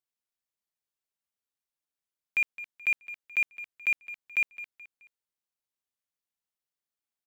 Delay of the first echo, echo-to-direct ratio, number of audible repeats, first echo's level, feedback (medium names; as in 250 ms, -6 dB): 214 ms, -14.5 dB, 3, -15.0 dB, 37%